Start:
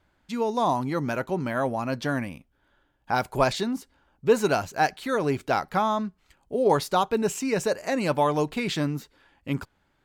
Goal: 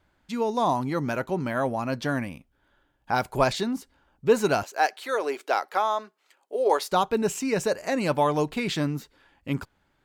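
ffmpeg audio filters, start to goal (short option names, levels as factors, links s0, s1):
-filter_complex "[0:a]asettb=1/sr,asplit=3[s0][s1][s2];[s0]atrim=end=4.634[s3];[s1]atrim=start=4.63:end=6.92,asetpts=PTS-STARTPTS,afade=t=in:d=0.004:c=qsin,afade=t=out:st=2.286:d=0.004:c=qsin,highpass=f=380:w=0.5412,highpass=f=380:w=1.3066[s4];[s2]atrim=start=6.916[s5];[s3][s4]acrossfade=d=0.004:c1=hsin:c2=qsin[s6];[s6][s5]acrossfade=d=0.004:c1=qsin:c2=hsin"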